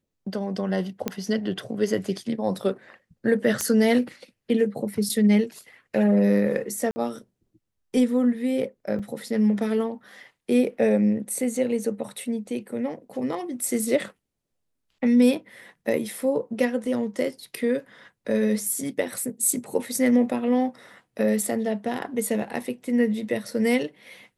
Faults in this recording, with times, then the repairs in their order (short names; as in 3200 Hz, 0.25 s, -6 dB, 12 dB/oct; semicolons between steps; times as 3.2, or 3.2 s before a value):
1.08 pop -11 dBFS
3.61 pop -10 dBFS
6.91–6.96 gap 50 ms
8.99–9 gap 5.1 ms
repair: de-click; interpolate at 6.91, 50 ms; interpolate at 8.99, 5.1 ms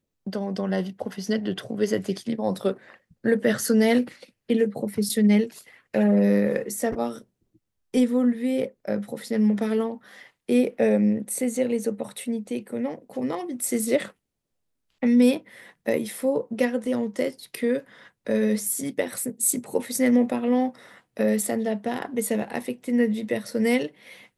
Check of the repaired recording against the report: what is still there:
none